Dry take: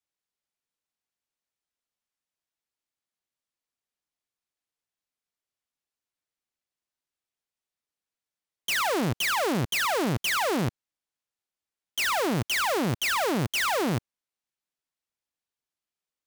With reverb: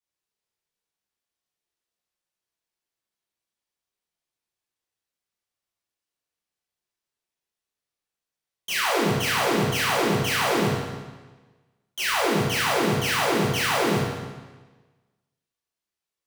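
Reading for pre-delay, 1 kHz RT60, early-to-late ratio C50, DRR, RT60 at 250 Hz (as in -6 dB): 15 ms, 1.3 s, -1.0 dB, -7.0 dB, 1.3 s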